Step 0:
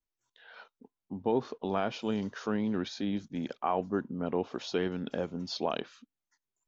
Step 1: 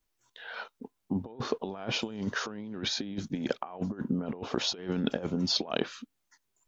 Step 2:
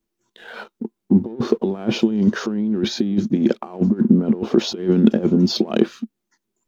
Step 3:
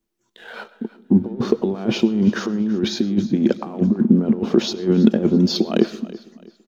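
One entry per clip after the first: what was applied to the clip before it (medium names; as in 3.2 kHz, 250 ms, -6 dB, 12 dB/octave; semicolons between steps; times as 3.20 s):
compressor with a negative ratio -37 dBFS, ratio -0.5; trim +5.5 dB
waveshaping leveller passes 1; small resonant body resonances 220/340 Hz, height 17 dB, ringing for 50 ms
feedback delay 331 ms, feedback 33%, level -18 dB; on a send at -18 dB: reverberation RT60 0.50 s, pre-delay 65 ms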